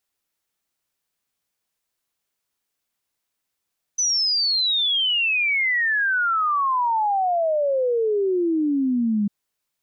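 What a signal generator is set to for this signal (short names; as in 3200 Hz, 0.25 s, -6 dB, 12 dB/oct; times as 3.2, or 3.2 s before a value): log sweep 6100 Hz -> 200 Hz 5.30 s -18 dBFS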